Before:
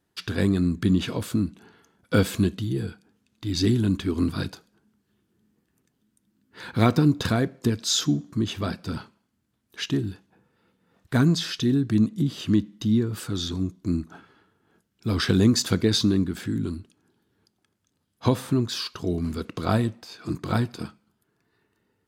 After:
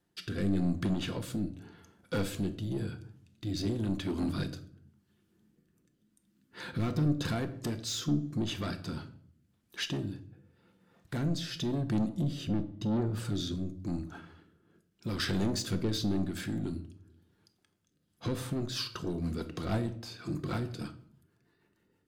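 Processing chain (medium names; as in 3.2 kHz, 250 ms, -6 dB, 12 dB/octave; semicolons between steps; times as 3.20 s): 12.47–13.25 s: tilt EQ -2 dB/octave; in parallel at 0 dB: compression, threshold -30 dBFS, peak gain reduction 17 dB; on the sum: saturation -19 dBFS, distortion -9 dB; rotary cabinet horn 0.9 Hz, later 6.3 Hz, at 17.77 s; simulated room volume 690 m³, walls furnished, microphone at 0.86 m; trim -6.5 dB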